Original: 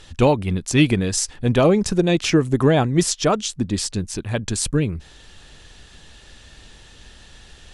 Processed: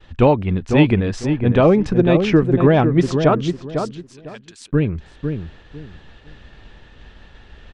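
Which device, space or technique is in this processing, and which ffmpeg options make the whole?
hearing-loss simulation: -filter_complex "[0:a]asettb=1/sr,asplit=3[link_01][link_02][link_03];[link_01]atrim=end=3.514[link_04];[link_02]atrim=start=3.51:end=4.72,asetpts=PTS-STARTPTS,afade=type=in:duration=0.004:curve=qsin,afade=type=out:start_time=1.206:duration=0.004:curve=qsin,aderivative[link_05];[link_03]atrim=start=4.716[link_06];[link_04][link_05]acrossfade=duration=0.004:curve1=hsin:curve2=qsin[link_07];[link_07][link_06]acrossfade=duration=0.004:curve1=qsin:curve2=hsin,lowpass=2400,asplit=2[link_08][link_09];[link_09]adelay=502,lowpass=frequency=1300:poles=1,volume=-6dB,asplit=2[link_10][link_11];[link_11]adelay=502,lowpass=frequency=1300:poles=1,volume=0.24,asplit=2[link_12][link_13];[link_13]adelay=502,lowpass=frequency=1300:poles=1,volume=0.24[link_14];[link_08][link_10][link_12][link_14]amix=inputs=4:normalize=0,agate=range=-33dB:threshold=-43dB:ratio=3:detection=peak,volume=2.5dB"

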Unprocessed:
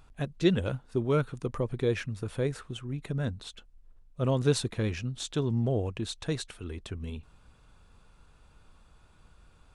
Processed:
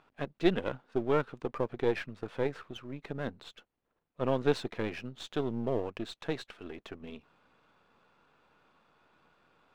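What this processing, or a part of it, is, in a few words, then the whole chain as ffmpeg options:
crystal radio: -af "highpass=270,lowpass=2900,aeval=exprs='if(lt(val(0),0),0.447*val(0),val(0))':channel_layout=same,volume=2.5dB"

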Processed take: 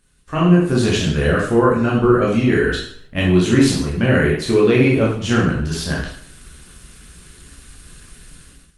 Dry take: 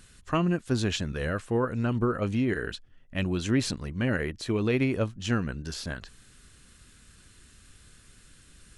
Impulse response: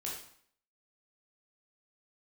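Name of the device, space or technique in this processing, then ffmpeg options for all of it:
speakerphone in a meeting room: -filter_complex "[1:a]atrim=start_sample=2205[link_01];[0:a][link_01]afir=irnorm=-1:irlink=0,dynaudnorm=framelen=160:gausssize=5:maxgain=12dB,agate=range=-6dB:threshold=-47dB:ratio=16:detection=peak,volume=1.5dB" -ar 48000 -c:a libopus -b:a 32k

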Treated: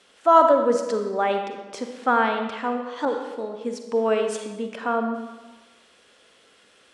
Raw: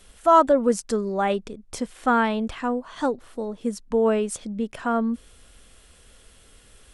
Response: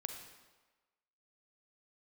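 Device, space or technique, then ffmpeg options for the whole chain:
supermarket ceiling speaker: -filter_complex "[0:a]highpass=300,lowpass=5300[link_01];[1:a]atrim=start_sample=2205[link_02];[link_01][link_02]afir=irnorm=-1:irlink=0,asettb=1/sr,asplit=3[link_03][link_04][link_05];[link_03]atrim=end=3.054[link_06];[link_04]atrim=start=3.05:end=4.76,asetpts=PTS-STARTPTS,afade=type=in:duration=0.004:curve=qsin,afade=type=out:start_time=1.706:duration=0.004:curve=qsin,adynamicequalizer=threshold=0.0112:dfrequency=1700:dqfactor=0.7:tfrequency=1700:tqfactor=0.7:attack=5:release=100:ratio=0.375:range=2:mode=boostabove:tftype=highshelf[link_07];[link_05]atrim=start=4.756[link_08];[link_06][link_07]acrossfade=duration=0.004:curve1=hsin:curve2=qsin[link_09];[link_09][link_08]acrossfade=duration=0.004:curve1=qsin:curve2=hsin,volume=3dB"

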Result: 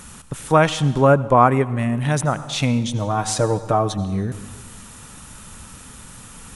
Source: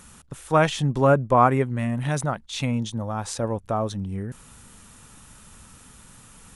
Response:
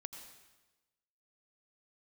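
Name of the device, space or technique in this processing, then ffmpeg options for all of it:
ducked reverb: -filter_complex "[0:a]asettb=1/sr,asplit=3[link_01][link_02][link_03];[link_01]atrim=end=2.894[link_04];[link_02]atrim=start=2.89:end=3.98,asetpts=PTS-STARTPTS,afade=type=in:duration=0.004:curve=qsin,afade=type=out:start_time=1.086:duration=0.004:curve=qsin,aecho=1:1:6.5:0.69,atrim=end_sample=48069[link_05];[link_03]atrim=start=3.976[link_06];[link_04][link_05]acrossfade=duration=0.004:curve1=hsin:curve2=qsin[link_07];[link_07][link_06]acrossfade=duration=0.004:curve1=qsin:curve2=hsin,asplit=3[link_08][link_09][link_10];[1:a]atrim=start_sample=2205[link_11];[link_09][link_11]afir=irnorm=-1:irlink=0[link_12];[link_10]apad=whole_len=288890[link_13];[link_12][link_13]sidechaincompress=threshold=-24dB:ratio=8:attack=24:release=1210,volume=5.5dB[link_14];[link_08][link_14]amix=inputs=2:normalize=0,volume=1.5dB"

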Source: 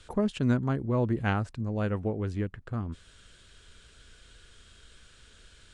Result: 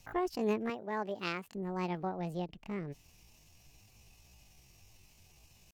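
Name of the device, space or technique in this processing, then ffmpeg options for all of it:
chipmunk voice: -filter_complex "[0:a]asettb=1/sr,asplit=3[link_01][link_02][link_03];[link_01]atrim=end=0.704[link_04];[link_02]atrim=start=0.7:end=1.57,asetpts=PTS-STARTPTS,afade=type=in:duration=0.004:curve=qsin,afade=type=out:start_time=0.866:duration=0.004:curve=qsin,highpass=frequency=270:poles=1[link_05];[link_03]atrim=start=1.566[link_06];[link_04][link_05]acrossfade=duration=0.004:curve1=hsin:curve2=qsin[link_07];[link_07][link_06]acrossfade=duration=0.004:curve1=qsin:curve2=hsin,asetrate=76340,aresample=44100,atempo=0.577676,volume=-6.5dB"

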